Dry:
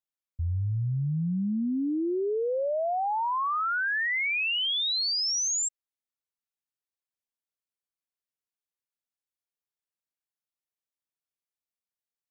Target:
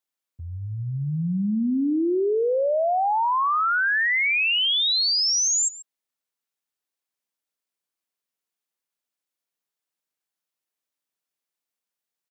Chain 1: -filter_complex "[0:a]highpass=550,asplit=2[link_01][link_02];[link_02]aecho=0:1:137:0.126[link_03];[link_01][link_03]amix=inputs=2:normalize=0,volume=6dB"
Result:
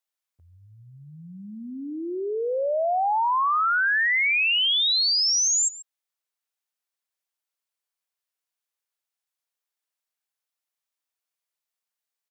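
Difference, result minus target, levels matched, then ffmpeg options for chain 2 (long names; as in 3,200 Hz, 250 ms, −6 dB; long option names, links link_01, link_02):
125 Hz band −18.5 dB
-filter_complex "[0:a]highpass=170,asplit=2[link_01][link_02];[link_02]aecho=0:1:137:0.126[link_03];[link_01][link_03]amix=inputs=2:normalize=0,volume=6dB"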